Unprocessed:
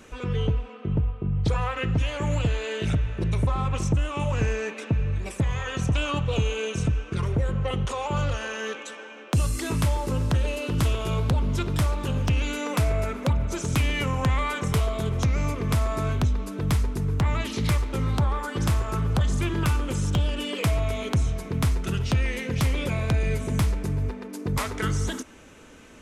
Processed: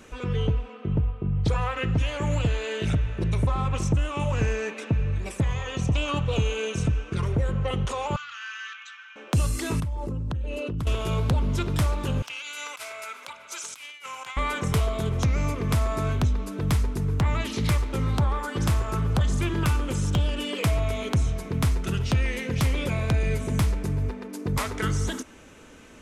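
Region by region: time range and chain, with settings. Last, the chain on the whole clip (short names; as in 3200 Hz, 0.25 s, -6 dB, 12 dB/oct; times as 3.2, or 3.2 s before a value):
5.53–6.08 LPF 8500 Hz + bell 1500 Hz -9 dB 0.44 oct
8.16–9.16 elliptic band-pass 1300–7200 Hz + air absorption 120 m + core saturation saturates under 1400 Hz
9.8–10.87 formant sharpening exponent 1.5 + compressor, threshold -26 dBFS
12.22–14.37 HPF 1400 Hz + notch 1800 Hz, Q 8.3 + negative-ratio compressor -37 dBFS, ratio -0.5
whole clip: dry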